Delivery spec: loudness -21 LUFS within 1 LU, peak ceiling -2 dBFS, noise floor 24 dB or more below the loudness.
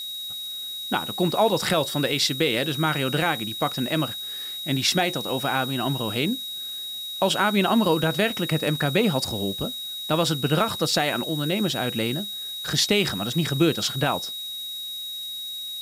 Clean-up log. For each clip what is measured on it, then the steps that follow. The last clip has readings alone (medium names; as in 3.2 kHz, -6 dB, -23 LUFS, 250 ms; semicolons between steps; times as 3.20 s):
steady tone 3.8 kHz; tone level -31 dBFS; noise floor -34 dBFS; noise floor target -48 dBFS; loudness -24.0 LUFS; peak level -8.0 dBFS; loudness target -21.0 LUFS
-> band-stop 3.8 kHz, Q 30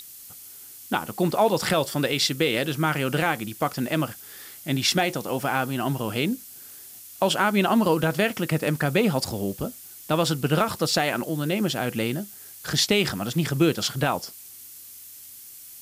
steady tone not found; noise floor -44 dBFS; noise floor target -49 dBFS
-> noise reduction 6 dB, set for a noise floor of -44 dBFS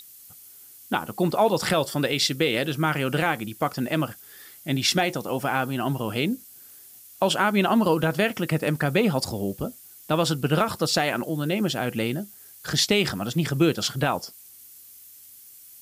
noise floor -48 dBFS; noise floor target -49 dBFS
-> noise reduction 6 dB, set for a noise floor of -48 dBFS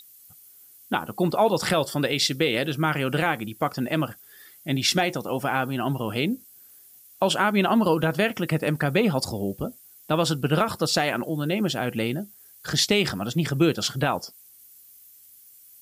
noise floor -52 dBFS; loudness -24.5 LUFS; peak level -9.0 dBFS; loudness target -21.0 LUFS
-> trim +3.5 dB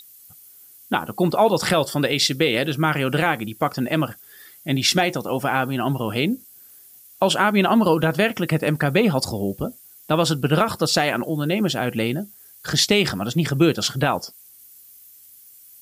loudness -21.0 LUFS; peak level -5.5 dBFS; noise floor -48 dBFS